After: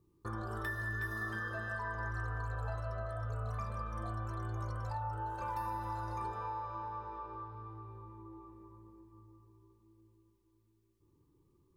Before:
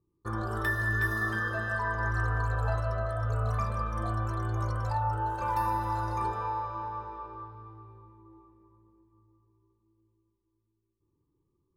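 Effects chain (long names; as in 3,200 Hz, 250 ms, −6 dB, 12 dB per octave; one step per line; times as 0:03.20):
downward compressor 2 to 1, threshold −55 dBFS, peak gain reduction 16.5 dB
level +6 dB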